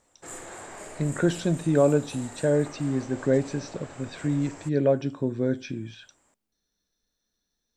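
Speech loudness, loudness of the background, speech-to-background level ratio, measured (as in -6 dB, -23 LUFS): -26.5 LUFS, -42.5 LUFS, 16.0 dB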